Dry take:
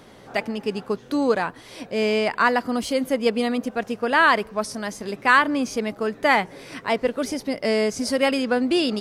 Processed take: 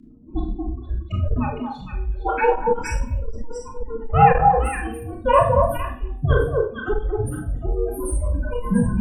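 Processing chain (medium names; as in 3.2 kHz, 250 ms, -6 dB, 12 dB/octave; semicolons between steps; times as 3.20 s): square wave that keeps the level; hum notches 50/100/150/200/250/300/350/400/450/500 Hz; reverb removal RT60 1.3 s; peaking EQ 90 Hz +10.5 dB 1.2 oct; spectral gate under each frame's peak -10 dB strong; bass shelf 160 Hz -7.5 dB; reverb removal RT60 0.83 s; formant-preserving pitch shift +11.5 st; repeats whose band climbs or falls 230 ms, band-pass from 1 kHz, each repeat 1.4 oct, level -1 dB; Schroeder reverb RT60 0.39 s, combs from 25 ms, DRR -1 dB; frequency shift -470 Hz; transformer saturation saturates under 120 Hz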